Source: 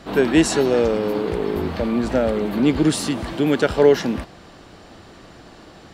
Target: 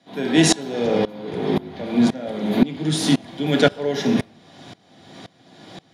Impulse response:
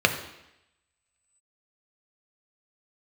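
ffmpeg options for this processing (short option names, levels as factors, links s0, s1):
-filter_complex "[0:a]asetnsamples=n=441:p=0,asendcmd='0.85 highshelf g 3;1.86 highshelf g 9',highshelf=f=5600:g=9.5[s0];[1:a]atrim=start_sample=2205,asetrate=61740,aresample=44100[s1];[s0][s1]afir=irnorm=-1:irlink=0,aeval=exprs='val(0)*pow(10,-23*if(lt(mod(-1.9*n/s,1),2*abs(-1.9)/1000),1-mod(-1.9*n/s,1)/(2*abs(-1.9)/1000),(mod(-1.9*n/s,1)-2*abs(-1.9)/1000)/(1-2*abs(-1.9)/1000))/20)':c=same,volume=0.447"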